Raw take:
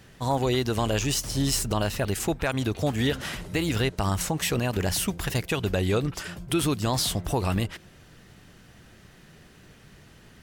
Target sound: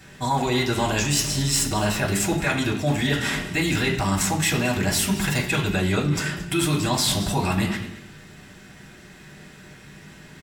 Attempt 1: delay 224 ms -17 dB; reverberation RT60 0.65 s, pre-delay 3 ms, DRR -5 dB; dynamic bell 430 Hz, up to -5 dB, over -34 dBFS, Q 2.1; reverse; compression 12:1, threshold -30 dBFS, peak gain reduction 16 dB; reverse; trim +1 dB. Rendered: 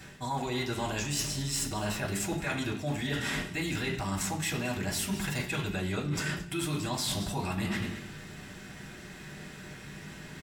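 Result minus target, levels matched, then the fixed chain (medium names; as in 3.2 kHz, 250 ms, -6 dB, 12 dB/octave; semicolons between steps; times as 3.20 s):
compression: peak gain reduction +10.5 dB
delay 224 ms -17 dB; reverberation RT60 0.65 s, pre-delay 3 ms, DRR -5 dB; dynamic bell 430 Hz, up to -5 dB, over -34 dBFS, Q 2.1; reverse; compression 12:1, threshold -18.5 dBFS, peak gain reduction 5.5 dB; reverse; trim +1 dB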